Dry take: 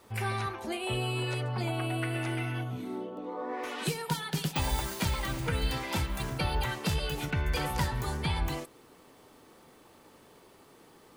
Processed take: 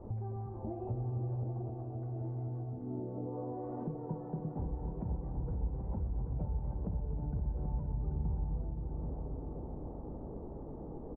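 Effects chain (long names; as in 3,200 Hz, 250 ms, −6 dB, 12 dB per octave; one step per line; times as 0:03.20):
spectral tilt −3.5 dB per octave
double-tracking delay 33 ms −13 dB
hum removal 47.06 Hz, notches 16
downward compressor 6 to 1, threshold −45 dBFS, peak gain reduction 28 dB
Chebyshev low-pass filter 770 Hz, order 3
echo machine with several playback heads 261 ms, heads all three, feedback 64%, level −11 dB
on a send at −14 dB: convolution reverb RT60 0.35 s, pre-delay 58 ms
on the sum: level +6.5 dB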